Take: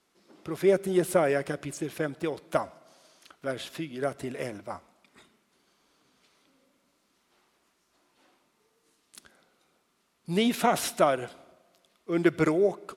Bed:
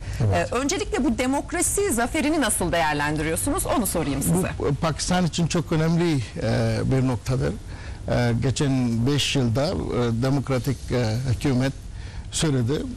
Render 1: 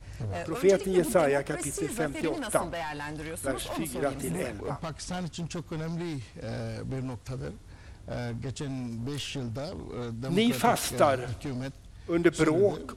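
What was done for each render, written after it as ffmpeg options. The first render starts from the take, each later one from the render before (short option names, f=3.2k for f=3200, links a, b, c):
-filter_complex "[1:a]volume=-13dB[a];[0:a][a]amix=inputs=2:normalize=0"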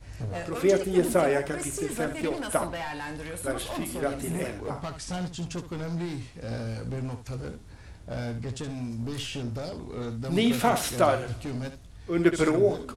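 -af "aecho=1:1:17|71:0.316|0.316"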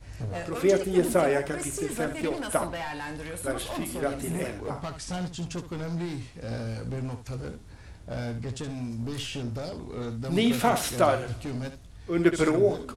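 -af anull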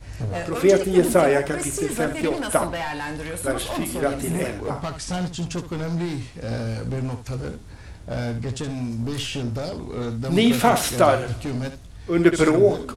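-af "volume=6dB,alimiter=limit=-3dB:level=0:latency=1"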